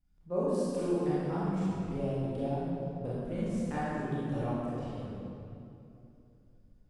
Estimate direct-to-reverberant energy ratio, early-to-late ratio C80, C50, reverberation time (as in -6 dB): -10.0 dB, -2.5 dB, -5.5 dB, 2.8 s